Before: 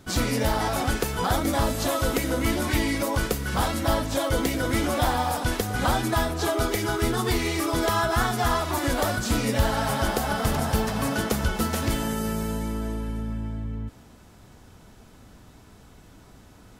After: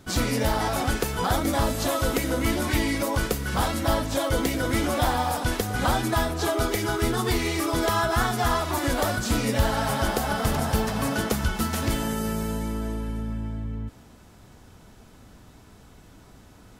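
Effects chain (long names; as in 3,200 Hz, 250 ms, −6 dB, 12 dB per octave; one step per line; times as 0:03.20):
0:11.34–0:11.78: parametric band 500 Hz −7 dB 0.73 octaves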